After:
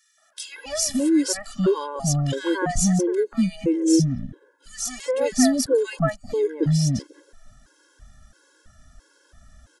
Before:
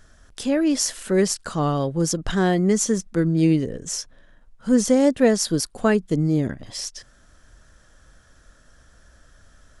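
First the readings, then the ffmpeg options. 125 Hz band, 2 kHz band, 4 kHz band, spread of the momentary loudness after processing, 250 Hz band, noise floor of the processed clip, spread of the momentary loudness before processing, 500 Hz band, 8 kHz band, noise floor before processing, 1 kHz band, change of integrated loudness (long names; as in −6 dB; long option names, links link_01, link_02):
+0.5 dB, −2.5 dB, −1.0 dB, 11 LU, −1.5 dB, −62 dBFS, 12 LU, −1.0 dB, 0.0 dB, −55 dBFS, −2.0 dB, −1.0 dB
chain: -filter_complex "[0:a]acrossover=split=540|1900[link_01][link_02][link_03];[link_02]adelay=180[link_04];[link_01]adelay=490[link_05];[link_05][link_04][link_03]amix=inputs=3:normalize=0,afftfilt=real='re*gt(sin(2*PI*1.5*pts/sr)*(1-2*mod(floor(b*sr/1024/280),2)),0)':imag='im*gt(sin(2*PI*1.5*pts/sr)*(1-2*mod(floor(b*sr/1024/280),2)),0)':win_size=1024:overlap=0.75,volume=3.5dB"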